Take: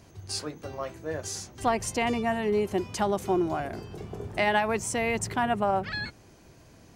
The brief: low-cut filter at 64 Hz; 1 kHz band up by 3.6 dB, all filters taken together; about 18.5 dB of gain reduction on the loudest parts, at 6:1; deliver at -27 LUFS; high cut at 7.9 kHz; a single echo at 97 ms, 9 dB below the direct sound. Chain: high-pass 64 Hz; low-pass 7.9 kHz; peaking EQ 1 kHz +5 dB; compression 6:1, threshold -39 dBFS; delay 97 ms -9 dB; trim +14.5 dB

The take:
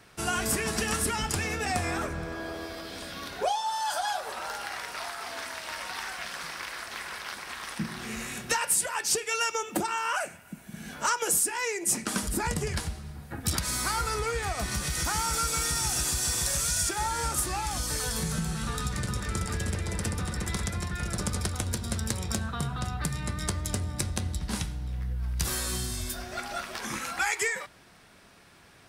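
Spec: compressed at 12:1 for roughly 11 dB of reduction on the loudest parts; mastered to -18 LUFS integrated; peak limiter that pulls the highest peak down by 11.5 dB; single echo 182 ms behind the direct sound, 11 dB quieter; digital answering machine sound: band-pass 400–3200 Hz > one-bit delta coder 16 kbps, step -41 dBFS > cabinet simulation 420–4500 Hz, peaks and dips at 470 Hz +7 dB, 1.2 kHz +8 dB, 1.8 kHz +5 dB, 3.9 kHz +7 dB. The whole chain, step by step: compression 12:1, threshold -34 dBFS; peak limiter -32 dBFS; band-pass 400–3200 Hz; delay 182 ms -11 dB; one-bit delta coder 16 kbps, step -41 dBFS; cabinet simulation 420–4500 Hz, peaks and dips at 470 Hz +7 dB, 1.2 kHz +8 dB, 1.8 kHz +5 dB, 3.9 kHz +7 dB; trim +22 dB

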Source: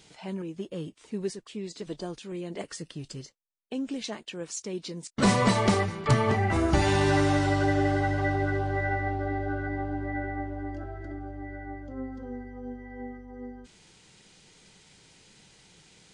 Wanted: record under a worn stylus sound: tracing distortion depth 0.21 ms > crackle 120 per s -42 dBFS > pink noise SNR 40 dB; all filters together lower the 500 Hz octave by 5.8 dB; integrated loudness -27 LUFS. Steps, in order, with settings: peaking EQ 500 Hz -8 dB; tracing distortion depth 0.21 ms; crackle 120 per s -42 dBFS; pink noise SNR 40 dB; trim +3.5 dB

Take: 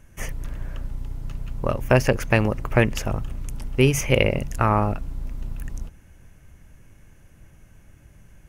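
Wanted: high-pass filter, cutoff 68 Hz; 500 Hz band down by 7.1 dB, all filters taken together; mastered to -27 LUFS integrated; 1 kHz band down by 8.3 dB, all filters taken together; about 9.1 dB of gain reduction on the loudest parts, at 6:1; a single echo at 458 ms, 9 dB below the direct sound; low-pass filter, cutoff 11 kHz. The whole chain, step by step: high-pass 68 Hz; low-pass 11 kHz; peaking EQ 500 Hz -6.5 dB; peaking EQ 1 kHz -9 dB; compression 6:1, threshold -25 dBFS; delay 458 ms -9 dB; trim +6 dB

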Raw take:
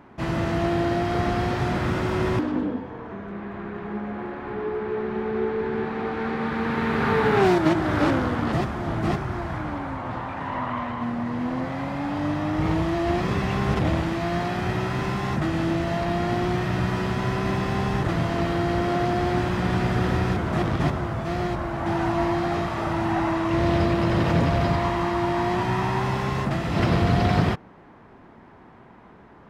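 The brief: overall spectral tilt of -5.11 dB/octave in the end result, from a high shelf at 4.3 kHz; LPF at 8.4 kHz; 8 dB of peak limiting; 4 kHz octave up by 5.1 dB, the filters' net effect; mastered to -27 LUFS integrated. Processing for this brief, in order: low-pass 8.4 kHz; peaking EQ 4 kHz +8.5 dB; treble shelf 4.3 kHz -3.5 dB; trim -1 dB; peak limiter -16.5 dBFS

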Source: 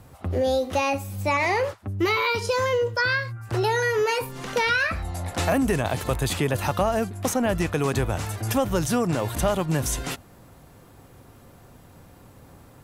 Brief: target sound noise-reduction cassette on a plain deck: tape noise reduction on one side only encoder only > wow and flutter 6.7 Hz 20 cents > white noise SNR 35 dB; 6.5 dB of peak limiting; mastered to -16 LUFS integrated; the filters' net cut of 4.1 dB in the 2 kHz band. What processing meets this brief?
peaking EQ 2 kHz -5.5 dB; peak limiter -16.5 dBFS; tape noise reduction on one side only encoder only; wow and flutter 6.7 Hz 20 cents; white noise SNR 35 dB; trim +11 dB

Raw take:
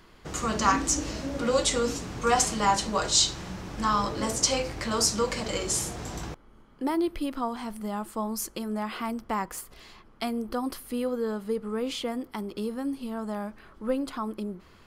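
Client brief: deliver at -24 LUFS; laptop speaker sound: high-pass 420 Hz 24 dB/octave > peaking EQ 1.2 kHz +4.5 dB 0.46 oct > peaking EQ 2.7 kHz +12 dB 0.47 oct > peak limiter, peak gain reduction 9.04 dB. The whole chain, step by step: high-pass 420 Hz 24 dB/octave; peaking EQ 1.2 kHz +4.5 dB 0.46 oct; peaking EQ 2.7 kHz +12 dB 0.47 oct; trim +6 dB; peak limiter -10 dBFS

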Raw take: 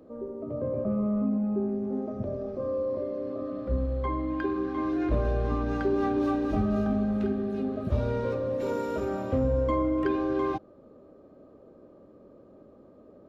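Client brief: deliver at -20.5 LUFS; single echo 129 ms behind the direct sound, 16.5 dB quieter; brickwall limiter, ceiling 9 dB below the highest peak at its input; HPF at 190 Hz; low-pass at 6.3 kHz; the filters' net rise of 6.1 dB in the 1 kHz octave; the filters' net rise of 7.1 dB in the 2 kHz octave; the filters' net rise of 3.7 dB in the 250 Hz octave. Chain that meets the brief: high-pass 190 Hz; low-pass 6.3 kHz; peaking EQ 250 Hz +6 dB; peaking EQ 1 kHz +5 dB; peaking EQ 2 kHz +7.5 dB; peak limiter -20 dBFS; delay 129 ms -16.5 dB; trim +7.5 dB

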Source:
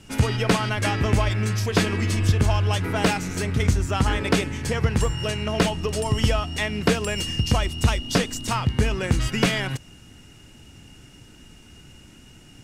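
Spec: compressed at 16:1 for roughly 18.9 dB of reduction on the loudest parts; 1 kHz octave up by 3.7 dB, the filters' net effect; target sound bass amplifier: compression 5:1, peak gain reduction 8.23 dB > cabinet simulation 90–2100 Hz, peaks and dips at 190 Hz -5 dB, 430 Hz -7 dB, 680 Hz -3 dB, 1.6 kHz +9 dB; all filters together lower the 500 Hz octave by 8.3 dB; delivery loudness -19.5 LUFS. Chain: peaking EQ 500 Hz -7 dB; peaking EQ 1 kHz +6 dB; compression 16:1, threshold -34 dBFS; compression 5:1, threshold -39 dBFS; cabinet simulation 90–2100 Hz, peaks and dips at 190 Hz -5 dB, 430 Hz -7 dB, 680 Hz -3 dB, 1.6 kHz +9 dB; trim +26 dB

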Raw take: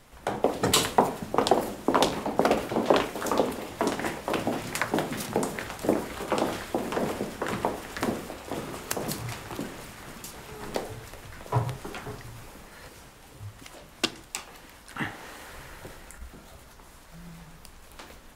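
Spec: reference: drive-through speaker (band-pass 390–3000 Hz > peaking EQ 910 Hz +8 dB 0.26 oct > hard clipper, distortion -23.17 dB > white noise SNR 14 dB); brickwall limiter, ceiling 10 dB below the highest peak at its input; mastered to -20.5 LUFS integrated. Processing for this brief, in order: peak limiter -16 dBFS; band-pass 390–3000 Hz; peaking EQ 910 Hz +8 dB 0.26 oct; hard clipper -17.5 dBFS; white noise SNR 14 dB; trim +13 dB

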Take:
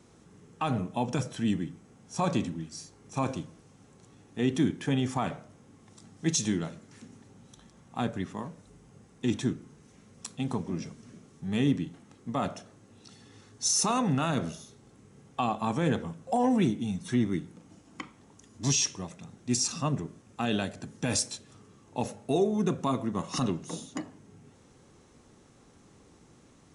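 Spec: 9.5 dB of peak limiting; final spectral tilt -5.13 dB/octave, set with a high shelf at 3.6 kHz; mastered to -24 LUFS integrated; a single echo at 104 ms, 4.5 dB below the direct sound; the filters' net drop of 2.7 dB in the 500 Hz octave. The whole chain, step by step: peaking EQ 500 Hz -3.5 dB; treble shelf 3.6 kHz -7 dB; peak limiter -25 dBFS; delay 104 ms -4.5 dB; trim +11 dB

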